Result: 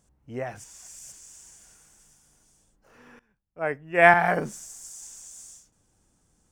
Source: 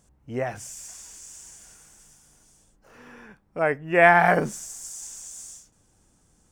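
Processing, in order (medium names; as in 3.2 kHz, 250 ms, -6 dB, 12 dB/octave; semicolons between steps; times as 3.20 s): 0.64–1.12 s: reverse; 3.19–4.14 s: three bands expanded up and down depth 70%; trim -4.5 dB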